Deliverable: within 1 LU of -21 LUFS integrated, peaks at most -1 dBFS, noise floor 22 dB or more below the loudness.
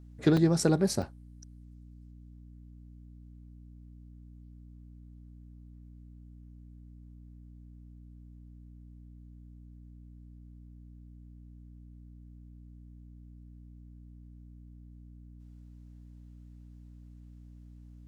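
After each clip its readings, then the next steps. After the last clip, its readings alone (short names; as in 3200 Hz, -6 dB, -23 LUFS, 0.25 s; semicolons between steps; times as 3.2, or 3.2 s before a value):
dropouts 2; longest dropout 3.8 ms; hum 60 Hz; harmonics up to 300 Hz; hum level -48 dBFS; loudness -27.0 LUFS; peak -11.0 dBFS; loudness target -21.0 LUFS
-> interpolate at 0.37/1.02, 3.8 ms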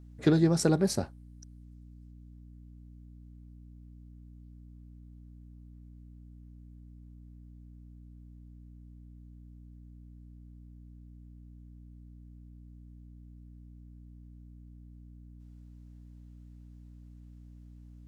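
dropouts 0; hum 60 Hz; harmonics up to 300 Hz; hum level -48 dBFS
-> de-hum 60 Hz, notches 5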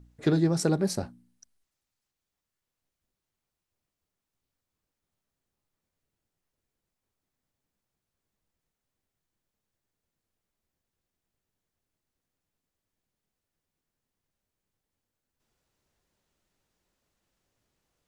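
hum none; loudness -26.5 LUFS; peak -12.0 dBFS; loudness target -21.0 LUFS
-> gain +5.5 dB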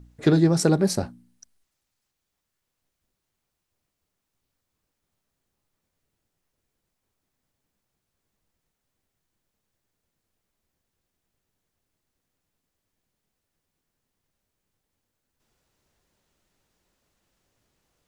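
loudness -21.0 LUFS; peak -6.5 dBFS; noise floor -81 dBFS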